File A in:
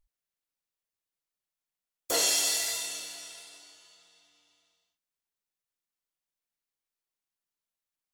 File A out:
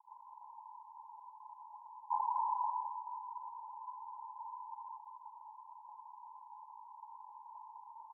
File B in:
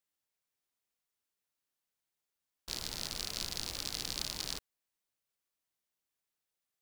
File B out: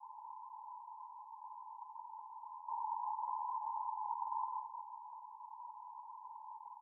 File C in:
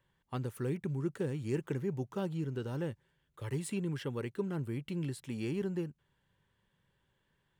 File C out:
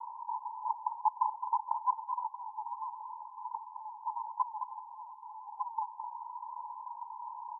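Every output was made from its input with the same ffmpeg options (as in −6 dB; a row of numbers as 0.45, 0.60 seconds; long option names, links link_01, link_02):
-af "aeval=exprs='val(0)+0.5*0.0158*sgn(val(0))':channel_layout=same,aeval=exprs='0.211*(cos(1*acos(clip(val(0)/0.211,-1,1)))-cos(1*PI/2))+0.0211*(cos(2*acos(clip(val(0)/0.211,-1,1)))-cos(2*PI/2))+0.0119*(cos(4*acos(clip(val(0)/0.211,-1,1)))-cos(4*PI/2))+0.00299*(cos(5*acos(clip(val(0)/0.211,-1,1)))-cos(5*PI/2))+0.0211*(cos(8*acos(clip(val(0)/0.211,-1,1)))-cos(8*PI/2))':channel_layout=same,aeval=exprs='(mod(11.2*val(0)+1,2)-1)/11.2':channel_layout=same,asuperpass=centerf=930:order=12:qfactor=4.6,aecho=1:1:214:0.376,volume=11.5dB"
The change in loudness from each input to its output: −17.5, −7.5, −0.5 LU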